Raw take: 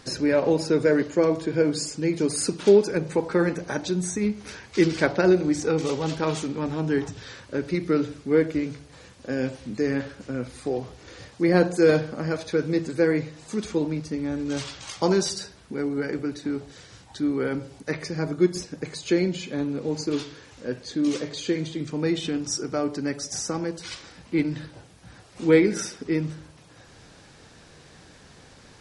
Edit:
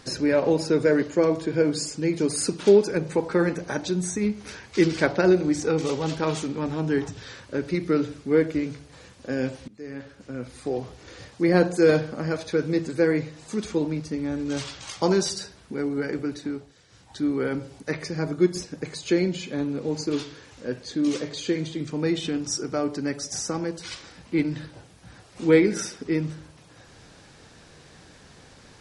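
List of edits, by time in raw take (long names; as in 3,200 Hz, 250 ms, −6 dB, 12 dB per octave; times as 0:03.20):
0:09.68–0:10.81: fade in, from −23 dB
0:16.39–0:17.20: duck −11 dB, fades 0.34 s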